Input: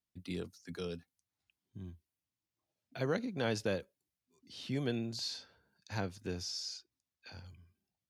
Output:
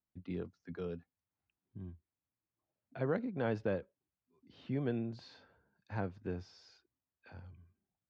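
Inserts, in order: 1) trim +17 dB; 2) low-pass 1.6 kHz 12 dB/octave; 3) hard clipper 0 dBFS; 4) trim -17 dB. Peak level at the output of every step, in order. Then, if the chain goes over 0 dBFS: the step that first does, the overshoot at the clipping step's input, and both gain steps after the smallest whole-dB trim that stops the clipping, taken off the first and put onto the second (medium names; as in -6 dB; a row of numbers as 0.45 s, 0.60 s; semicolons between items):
-2.5 dBFS, -4.5 dBFS, -4.5 dBFS, -21.5 dBFS; nothing clips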